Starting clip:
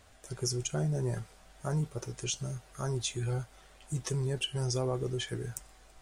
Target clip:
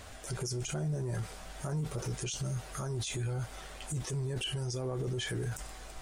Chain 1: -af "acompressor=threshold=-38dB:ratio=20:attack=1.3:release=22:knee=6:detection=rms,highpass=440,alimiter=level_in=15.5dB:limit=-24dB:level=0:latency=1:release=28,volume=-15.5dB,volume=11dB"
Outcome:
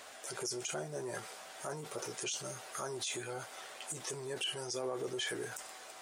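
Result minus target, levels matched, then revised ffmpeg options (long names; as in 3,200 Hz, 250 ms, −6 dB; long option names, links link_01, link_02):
500 Hz band +3.5 dB
-af "acompressor=threshold=-38dB:ratio=20:attack=1.3:release=22:knee=6:detection=rms,alimiter=level_in=15.5dB:limit=-24dB:level=0:latency=1:release=28,volume=-15.5dB,volume=11dB"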